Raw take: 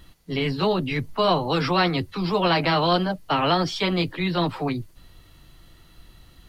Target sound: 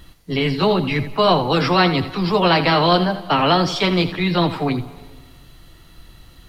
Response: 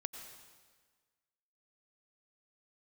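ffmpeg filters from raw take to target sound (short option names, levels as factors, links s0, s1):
-filter_complex "[0:a]asplit=2[s0][s1];[1:a]atrim=start_sample=2205,adelay=82[s2];[s1][s2]afir=irnorm=-1:irlink=0,volume=0.316[s3];[s0][s3]amix=inputs=2:normalize=0,volume=1.78"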